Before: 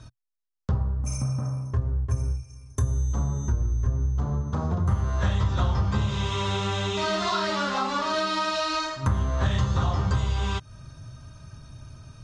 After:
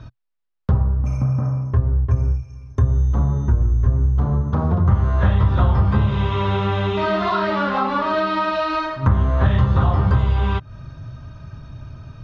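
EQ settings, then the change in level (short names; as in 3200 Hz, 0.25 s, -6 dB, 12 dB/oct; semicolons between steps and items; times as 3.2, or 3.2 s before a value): dynamic EQ 5700 Hz, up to -7 dB, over -48 dBFS, Q 0.72; air absorption 250 m; +8.0 dB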